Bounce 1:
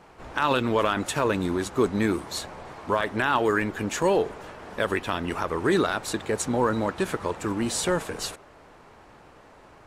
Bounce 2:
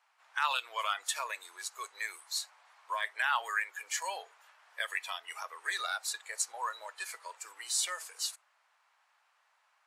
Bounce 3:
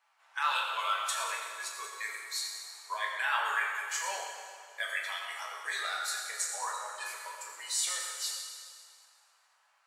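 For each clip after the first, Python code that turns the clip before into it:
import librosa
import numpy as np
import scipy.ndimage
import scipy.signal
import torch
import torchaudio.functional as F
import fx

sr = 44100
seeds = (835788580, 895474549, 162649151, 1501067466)

y1 = fx.noise_reduce_blind(x, sr, reduce_db=12)
y1 = scipy.signal.sosfilt(scipy.signal.bessel(6, 1300.0, 'highpass', norm='mag', fs=sr, output='sos'), y1)
y1 = y1 * 10.0 ** (-1.5 / 20.0)
y2 = fx.rev_fdn(y1, sr, rt60_s=2.1, lf_ratio=1.0, hf_ratio=0.9, size_ms=70.0, drr_db=-3.0)
y2 = y2 * 10.0 ** (-3.0 / 20.0)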